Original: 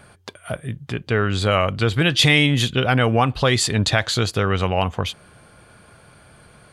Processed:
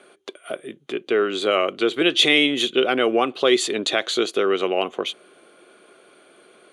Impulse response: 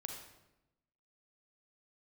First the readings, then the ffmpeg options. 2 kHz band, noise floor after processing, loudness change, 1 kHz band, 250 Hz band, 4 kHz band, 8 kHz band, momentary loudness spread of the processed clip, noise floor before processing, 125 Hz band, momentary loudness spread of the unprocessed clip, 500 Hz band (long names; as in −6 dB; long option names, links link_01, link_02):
−2.0 dB, −54 dBFS, −1.0 dB, −3.0 dB, −1.0 dB, +0.5 dB, −4.0 dB, 16 LU, −50 dBFS, −24.5 dB, 15 LU, +3.0 dB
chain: -af "highpass=frequency=280:width=0.5412,highpass=frequency=280:width=1.3066,equalizer=frequency=370:width_type=q:width=4:gain=9,equalizer=frequency=910:width_type=q:width=4:gain=-9,equalizer=frequency=1700:width_type=q:width=4:gain=-6,equalizer=frequency=3400:width_type=q:width=4:gain=3,equalizer=frequency=5000:width_type=q:width=4:gain=-10,equalizer=frequency=8000:width_type=q:width=4:gain=-6,lowpass=frequency=9900:width=0.5412,lowpass=frequency=9900:width=1.3066"